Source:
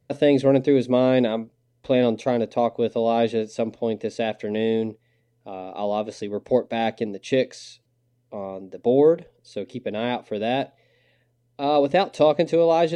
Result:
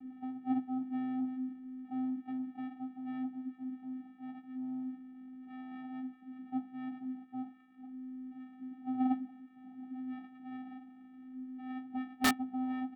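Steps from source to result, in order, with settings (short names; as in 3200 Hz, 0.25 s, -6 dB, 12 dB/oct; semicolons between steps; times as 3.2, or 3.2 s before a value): delta modulation 16 kbps, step -18 dBFS; gate -12 dBFS, range -20 dB; steep low-pass 1400 Hz 96 dB/oct; spectral noise reduction 13 dB; negative-ratio compressor -26 dBFS, ratio -0.5; vocoder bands 4, square 257 Hz; wrapped overs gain 23.5 dB; doubler 15 ms -5 dB; gain +2 dB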